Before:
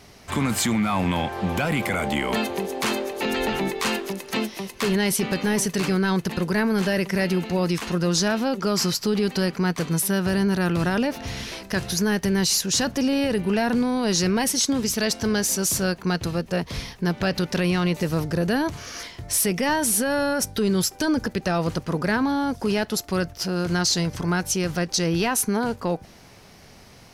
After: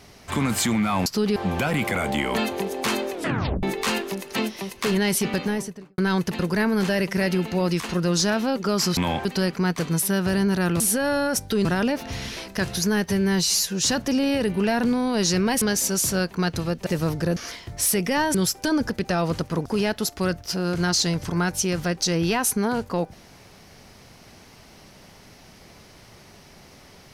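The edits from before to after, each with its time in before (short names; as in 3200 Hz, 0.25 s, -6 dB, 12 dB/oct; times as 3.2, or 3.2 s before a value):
1.06–1.34 swap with 8.95–9.25
3.1 tape stop 0.51 s
5.28–5.96 studio fade out
12.22–12.73 stretch 1.5×
14.51–15.29 cut
16.54–17.97 cut
18.47–18.88 cut
19.86–20.71 move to 10.8
22.02–22.57 cut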